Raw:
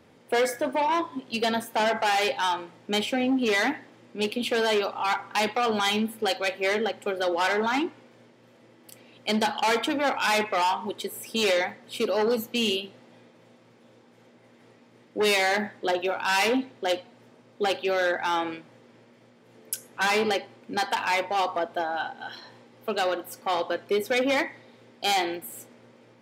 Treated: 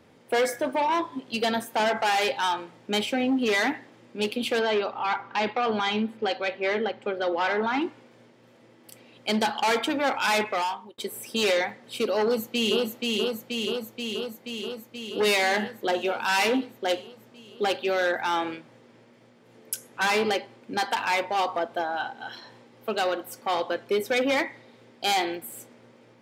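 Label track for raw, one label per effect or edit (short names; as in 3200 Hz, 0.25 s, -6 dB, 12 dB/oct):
4.590000	7.820000	air absorption 160 m
10.470000	10.980000	fade out
12.230000	12.810000	echo throw 0.48 s, feedback 75%, level -2 dB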